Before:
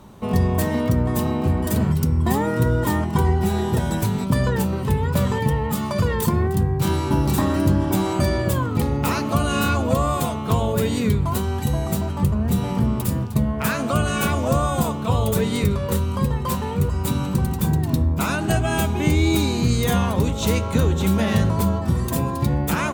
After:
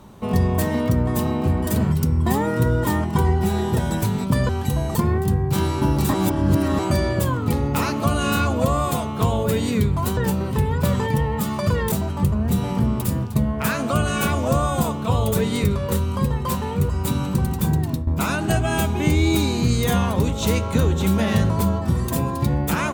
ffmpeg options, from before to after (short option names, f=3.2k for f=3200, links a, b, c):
-filter_complex "[0:a]asplit=8[a][b][c][d][e][f][g][h];[a]atrim=end=4.492[i];[b]atrim=start=11.458:end=11.922[j];[c]atrim=start=6.238:end=7.432[k];[d]atrim=start=7.428:end=8.082,asetpts=PTS-STARTPTS,areverse[l];[e]atrim=start=8.078:end=11.462[m];[f]atrim=start=4.488:end=6.242[n];[g]atrim=start=11.918:end=18.07,asetpts=PTS-STARTPTS,afade=t=out:st=5.902:d=0.25:silence=0.251189[o];[h]atrim=start=18.07,asetpts=PTS-STARTPTS,afade=t=in:d=0.004:c=hsin:silence=0.251189[p];[i][j]acrossfade=d=0.004:c1=hsin:c2=hsin[q];[q][k]acrossfade=d=0.004:c1=hsin:c2=hsin[r];[r][l]acrossfade=d=0.004:c1=hsin:c2=hsin[s];[s][m]acrossfade=d=0.004:c1=hsin:c2=hsin[t];[t][n]acrossfade=d=0.004:c1=hsin:c2=hsin[u];[o][p]concat=n=2:v=0:a=1[v];[u][v]acrossfade=d=0.004:c1=hsin:c2=hsin"